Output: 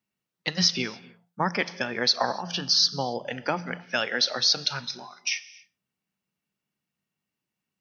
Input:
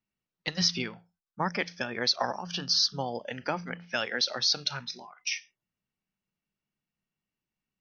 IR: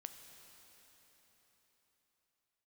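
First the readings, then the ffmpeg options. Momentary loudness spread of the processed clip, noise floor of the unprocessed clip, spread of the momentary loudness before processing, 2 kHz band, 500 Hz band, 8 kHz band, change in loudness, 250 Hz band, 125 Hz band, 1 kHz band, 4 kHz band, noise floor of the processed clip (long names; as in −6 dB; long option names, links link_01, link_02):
11 LU, below −85 dBFS, 11 LU, +4.0 dB, +4.0 dB, +4.0 dB, +4.0 dB, +3.5 dB, +3.0 dB, +4.0 dB, +4.0 dB, below −85 dBFS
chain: -filter_complex "[0:a]highpass=100,asplit=2[link_01][link_02];[1:a]atrim=start_sample=2205,afade=type=out:start_time=0.34:duration=0.01,atrim=end_sample=15435[link_03];[link_02][link_03]afir=irnorm=-1:irlink=0,volume=1dB[link_04];[link_01][link_04]amix=inputs=2:normalize=0"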